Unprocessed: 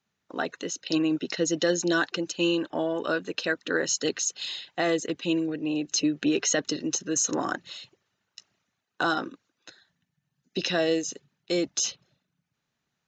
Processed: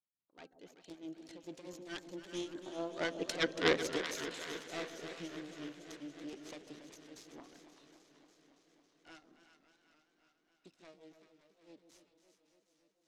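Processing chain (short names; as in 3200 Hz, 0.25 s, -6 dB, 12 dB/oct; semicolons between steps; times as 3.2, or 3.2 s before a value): self-modulated delay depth 0.33 ms; Doppler pass-by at 3.53, 9 m/s, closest 1.5 m; LPF 5800 Hz 12 dB/oct; bell 1600 Hz -3 dB 2.8 oct; de-hum 263.3 Hz, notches 7; tremolo 4.6 Hz, depth 86%; on a send: split-band echo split 810 Hz, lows 0.144 s, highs 0.381 s, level -10 dB; on the sum: warbling echo 0.28 s, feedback 77%, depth 112 cents, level -12.5 dB; gain +5 dB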